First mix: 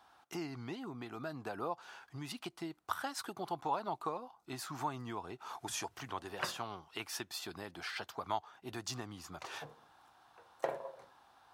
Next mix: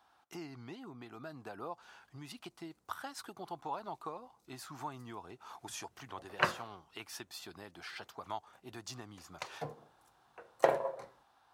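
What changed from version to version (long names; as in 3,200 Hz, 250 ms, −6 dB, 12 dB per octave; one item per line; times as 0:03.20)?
speech −4.5 dB
background +9.0 dB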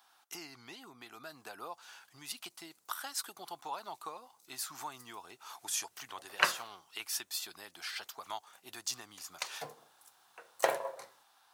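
master: add spectral tilt +4 dB per octave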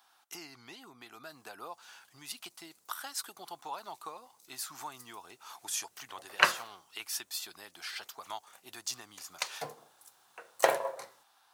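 background +4.0 dB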